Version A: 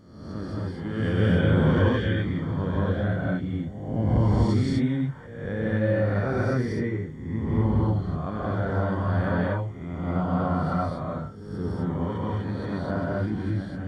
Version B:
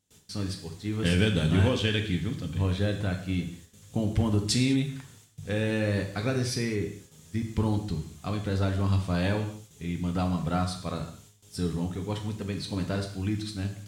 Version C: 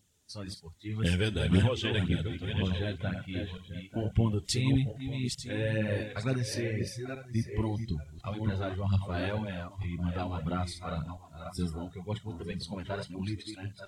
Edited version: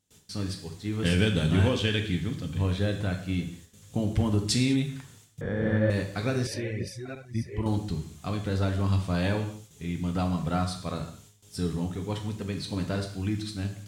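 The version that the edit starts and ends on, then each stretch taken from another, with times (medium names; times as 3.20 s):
B
5.41–5.90 s: from A
6.47–7.66 s: from C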